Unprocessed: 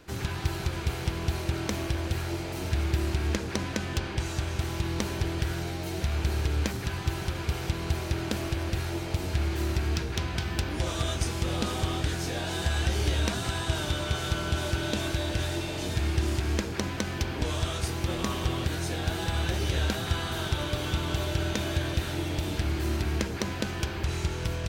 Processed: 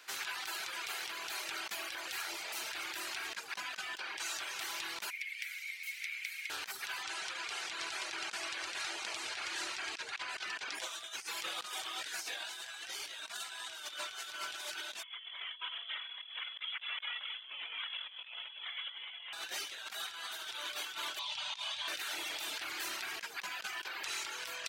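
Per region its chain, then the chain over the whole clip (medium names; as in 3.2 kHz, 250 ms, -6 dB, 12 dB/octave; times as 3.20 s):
5.10–6.50 s: ladder high-pass 2.1 kHz, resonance 85% + treble shelf 8.7 kHz +8.5 dB
7.03–10.75 s: low-pass 9.2 kHz 24 dB/octave + delay 736 ms -6.5 dB
15.03–19.33 s: high-pass 270 Hz 24 dB/octave + frequency inversion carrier 3.7 kHz
21.19–21.88 s: FFT filter 160 Hz 0 dB, 340 Hz -23 dB, 480 Hz -15 dB, 1 kHz +5 dB, 1.5 kHz -11 dB, 3.3 kHz +3 dB, 9.5 kHz -9 dB, 14 kHz -28 dB + short-mantissa float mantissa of 8-bit
whole clip: reverb removal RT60 0.77 s; high-pass 1.3 kHz 12 dB/octave; compressor with a negative ratio -42 dBFS, ratio -0.5; trim +1 dB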